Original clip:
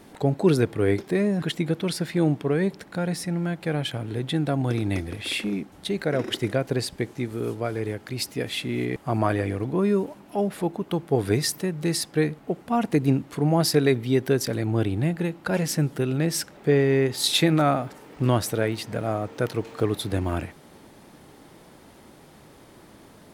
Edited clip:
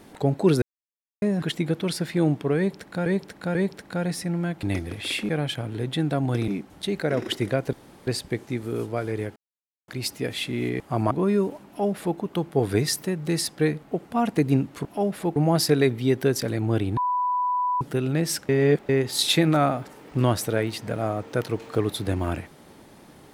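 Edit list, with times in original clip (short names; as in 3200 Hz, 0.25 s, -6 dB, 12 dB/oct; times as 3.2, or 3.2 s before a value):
0.62–1.22 mute
2.57–3.06 loop, 3 plays
4.84–5.5 move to 3.65
6.75 insert room tone 0.34 s
8.04 insert silence 0.52 s
9.27–9.67 cut
10.23–10.74 copy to 13.41
15.02–15.86 bleep 992 Hz -21 dBFS
16.54–16.94 reverse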